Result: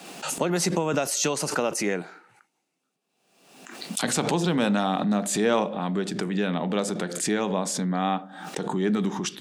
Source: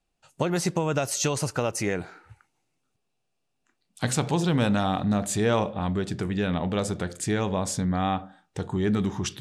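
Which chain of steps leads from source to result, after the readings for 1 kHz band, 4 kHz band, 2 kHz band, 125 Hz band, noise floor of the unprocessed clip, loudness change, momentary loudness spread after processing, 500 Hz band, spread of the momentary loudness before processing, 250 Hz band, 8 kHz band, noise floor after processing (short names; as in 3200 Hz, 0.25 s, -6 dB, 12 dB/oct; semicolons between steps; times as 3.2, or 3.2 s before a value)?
+1.5 dB, +3.0 dB, +2.0 dB, -4.0 dB, -77 dBFS, +1.0 dB, 8 LU, +1.5 dB, 7 LU, +1.0 dB, +3.0 dB, -78 dBFS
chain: steep high-pass 170 Hz 36 dB/oct; backwards sustainer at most 57 dB/s; gain +1 dB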